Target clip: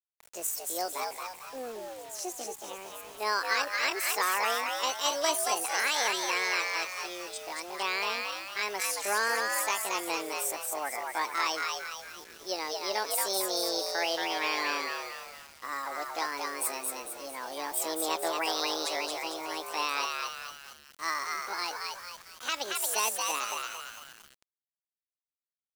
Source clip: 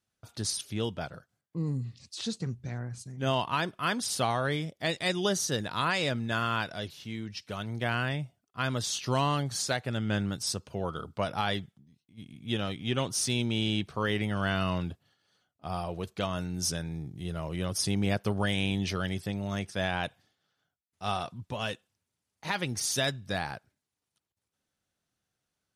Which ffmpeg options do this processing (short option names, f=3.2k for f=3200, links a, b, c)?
-filter_complex "[0:a]asetrate=70004,aresample=44100,atempo=0.629961,highpass=f=420:w=0.5412,highpass=f=420:w=1.3066,asplit=7[a][b][c][d][e][f][g];[b]adelay=226,afreqshift=89,volume=-3dB[h];[c]adelay=452,afreqshift=178,volume=-9.7dB[i];[d]adelay=678,afreqshift=267,volume=-16.5dB[j];[e]adelay=904,afreqshift=356,volume=-23.2dB[k];[f]adelay=1130,afreqshift=445,volume=-30dB[l];[g]adelay=1356,afreqshift=534,volume=-36.7dB[m];[a][h][i][j][k][l][m]amix=inputs=7:normalize=0,acrusher=bits=7:mix=0:aa=0.000001"